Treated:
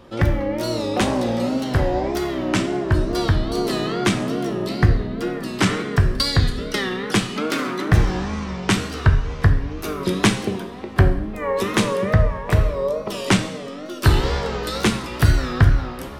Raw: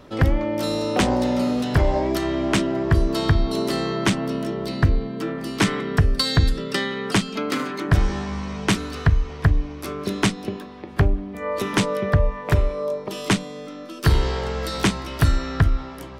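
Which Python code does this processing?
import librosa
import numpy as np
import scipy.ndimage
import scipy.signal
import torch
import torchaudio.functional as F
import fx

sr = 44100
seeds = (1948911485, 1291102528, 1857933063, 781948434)

y = fx.wow_flutter(x, sr, seeds[0], rate_hz=2.1, depth_cents=130.0)
y = fx.rider(y, sr, range_db=10, speed_s=2.0)
y = fx.rev_double_slope(y, sr, seeds[1], early_s=0.66, late_s=1.8, knee_db=-18, drr_db=5.5)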